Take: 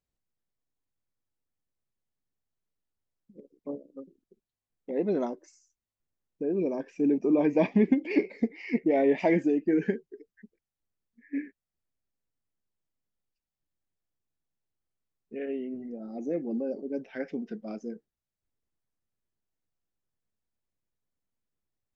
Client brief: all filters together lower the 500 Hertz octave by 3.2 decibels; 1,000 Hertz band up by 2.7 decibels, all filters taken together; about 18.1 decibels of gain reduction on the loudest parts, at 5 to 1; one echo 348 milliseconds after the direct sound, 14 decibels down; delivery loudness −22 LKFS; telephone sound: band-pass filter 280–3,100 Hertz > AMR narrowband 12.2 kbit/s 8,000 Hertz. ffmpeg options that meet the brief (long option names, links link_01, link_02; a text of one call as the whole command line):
ffmpeg -i in.wav -af "equalizer=frequency=500:width_type=o:gain=-5,equalizer=frequency=1000:width_type=o:gain=7,acompressor=threshold=-41dB:ratio=5,highpass=280,lowpass=3100,aecho=1:1:348:0.2,volume=25dB" -ar 8000 -c:a libopencore_amrnb -b:a 12200 out.amr